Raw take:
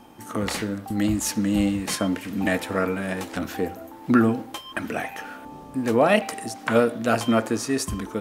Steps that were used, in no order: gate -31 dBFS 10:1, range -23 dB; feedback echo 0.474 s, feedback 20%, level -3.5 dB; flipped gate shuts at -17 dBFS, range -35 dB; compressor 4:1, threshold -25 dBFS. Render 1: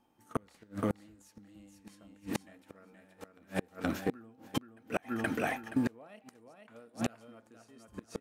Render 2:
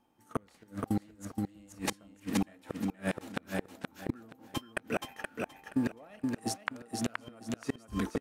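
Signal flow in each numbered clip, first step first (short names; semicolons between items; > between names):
gate > feedback echo > flipped gate > compressor; gate > flipped gate > compressor > feedback echo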